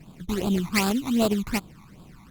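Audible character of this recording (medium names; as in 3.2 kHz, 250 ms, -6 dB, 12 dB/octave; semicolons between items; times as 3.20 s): aliases and images of a low sample rate 3.4 kHz, jitter 20%; phasing stages 12, 2.6 Hz, lowest notch 500–2000 Hz; Opus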